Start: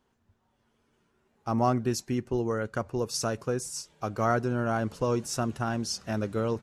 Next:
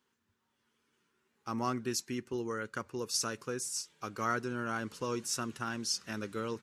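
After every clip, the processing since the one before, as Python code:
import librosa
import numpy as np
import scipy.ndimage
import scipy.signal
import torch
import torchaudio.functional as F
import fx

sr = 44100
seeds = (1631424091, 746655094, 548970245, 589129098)

y = fx.highpass(x, sr, hz=490.0, slope=6)
y = fx.peak_eq(y, sr, hz=680.0, db=-14.0, octaves=0.78)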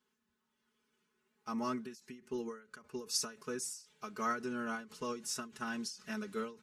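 y = x + 1.0 * np.pad(x, (int(4.7 * sr / 1000.0), 0))[:len(x)]
y = fx.rider(y, sr, range_db=10, speed_s=2.0)
y = fx.end_taper(y, sr, db_per_s=150.0)
y = y * 10.0 ** (-5.5 / 20.0)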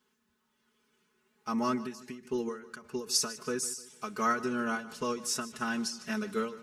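y = fx.echo_feedback(x, sr, ms=151, feedback_pct=40, wet_db=-17.0)
y = y * 10.0 ** (6.5 / 20.0)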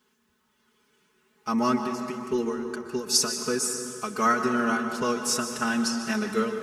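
y = fx.rev_plate(x, sr, seeds[0], rt60_s=2.8, hf_ratio=0.5, predelay_ms=110, drr_db=6.5)
y = y * 10.0 ** (6.0 / 20.0)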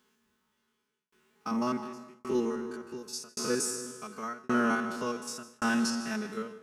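y = fx.spec_steps(x, sr, hold_ms=50)
y = fx.tremolo_shape(y, sr, shape='saw_down', hz=0.89, depth_pct=100)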